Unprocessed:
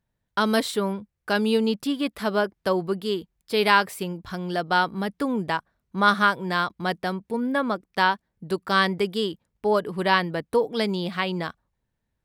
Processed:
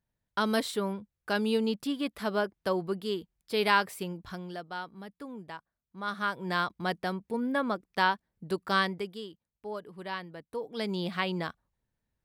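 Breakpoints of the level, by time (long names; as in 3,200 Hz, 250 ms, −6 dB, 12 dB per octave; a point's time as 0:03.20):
0:04.28 −6 dB
0:04.72 −17 dB
0:06.03 −17 dB
0:06.50 −5 dB
0:08.74 −5 dB
0:09.27 −16.5 dB
0:10.50 −16.5 dB
0:11.00 −4.5 dB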